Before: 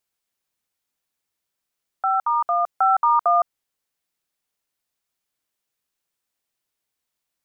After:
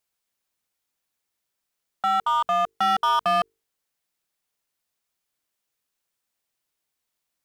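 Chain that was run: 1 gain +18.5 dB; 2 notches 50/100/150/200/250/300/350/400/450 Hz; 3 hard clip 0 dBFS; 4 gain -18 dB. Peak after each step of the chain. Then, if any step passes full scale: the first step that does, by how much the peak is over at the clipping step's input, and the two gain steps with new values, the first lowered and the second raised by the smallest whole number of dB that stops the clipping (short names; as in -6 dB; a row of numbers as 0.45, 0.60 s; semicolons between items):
+8.0, +8.0, 0.0, -18.0 dBFS; step 1, 8.0 dB; step 1 +10.5 dB, step 4 -10 dB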